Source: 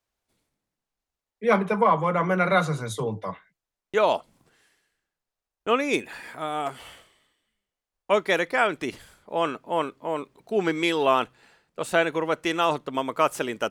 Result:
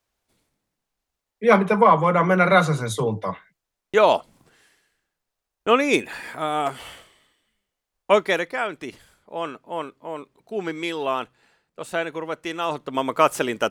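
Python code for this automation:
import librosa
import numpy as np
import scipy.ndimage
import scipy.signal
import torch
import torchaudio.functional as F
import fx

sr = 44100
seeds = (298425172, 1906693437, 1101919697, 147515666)

y = fx.gain(x, sr, db=fx.line((8.12, 5.0), (8.59, -4.0), (12.6, -4.0), (13.07, 4.5)))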